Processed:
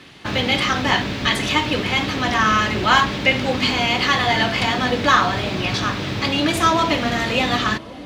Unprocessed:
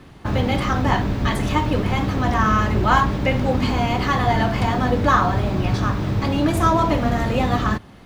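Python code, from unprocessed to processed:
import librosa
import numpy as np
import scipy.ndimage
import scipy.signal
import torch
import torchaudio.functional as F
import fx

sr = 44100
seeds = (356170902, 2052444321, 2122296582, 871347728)

y = fx.weighting(x, sr, curve='D')
y = fx.echo_wet_lowpass(y, sr, ms=536, feedback_pct=79, hz=650.0, wet_db=-17.0)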